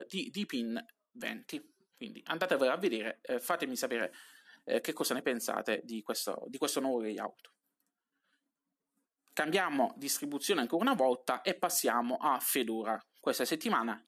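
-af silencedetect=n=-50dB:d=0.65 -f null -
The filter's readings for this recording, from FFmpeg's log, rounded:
silence_start: 7.46
silence_end: 9.28 | silence_duration: 1.82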